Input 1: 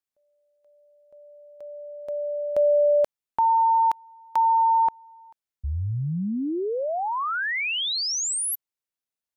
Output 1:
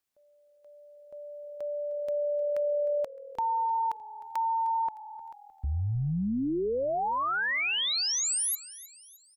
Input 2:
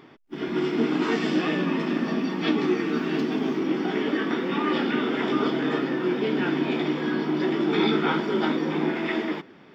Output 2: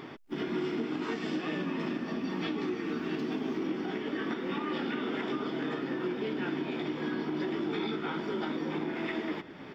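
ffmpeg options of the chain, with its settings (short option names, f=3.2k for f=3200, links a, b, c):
-filter_complex "[0:a]acompressor=threshold=-33dB:ratio=8:attack=0.31:release=730:knee=6:detection=peak,asplit=5[a][b][c][d][e];[b]adelay=307,afreqshift=-40,volume=-17.5dB[f];[c]adelay=614,afreqshift=-80,volume=-24.8dB[g];[d]adelay=921,afreqshift=-120,volume=-32.2dB[h];[e]adelay=1228,afreqshift=-160,volume=-39.5dB[i];[a][f][g][h][i]amix=inputs=5:normalize=0,volume=6dB"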